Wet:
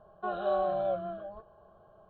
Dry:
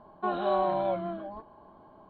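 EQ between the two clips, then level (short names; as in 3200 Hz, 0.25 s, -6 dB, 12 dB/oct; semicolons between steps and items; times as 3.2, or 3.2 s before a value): LPF 2100 Hz 6 dB/oct; fixed phaser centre 1400 Hz, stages 8; 0.0 dB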